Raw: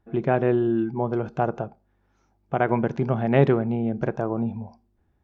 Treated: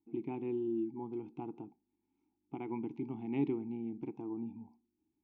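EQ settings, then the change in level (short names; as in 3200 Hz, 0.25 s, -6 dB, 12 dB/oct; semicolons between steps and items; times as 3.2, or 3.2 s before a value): band shelf 1100 Hz -9 dB 2.3 oct; dynamic EQ 300 Hz, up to -4 dB, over -31 dBFS, Q 0.82; vowel filter u; +1.0 dB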